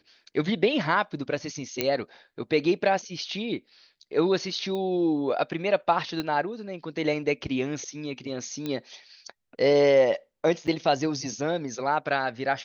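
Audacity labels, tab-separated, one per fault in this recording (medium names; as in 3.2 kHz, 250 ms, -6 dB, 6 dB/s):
1.810000	1.810000	pop -9 dBFS
4.750000	4.750000	pop -22 dBFS
6.200000	6.200000	pop -16 dBFS
8.660000	8.660000	pop -18 dBFS
10.670000	10.680000	dropout 6.7 ms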